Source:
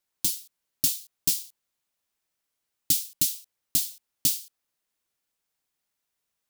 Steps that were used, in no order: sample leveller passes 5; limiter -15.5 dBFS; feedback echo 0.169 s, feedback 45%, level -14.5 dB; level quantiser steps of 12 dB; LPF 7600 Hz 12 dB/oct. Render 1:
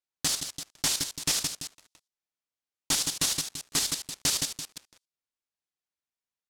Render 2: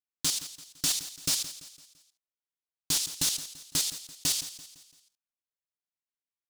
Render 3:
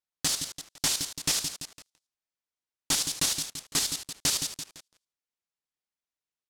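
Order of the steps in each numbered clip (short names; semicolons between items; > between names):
feedback echo > level quantiser > limiter > sample leveller > LPF; limiter > LPF > level quantiser > sample leveller > feedback echo; level quantiser > limiter > feedback echo > sample leveller > LPF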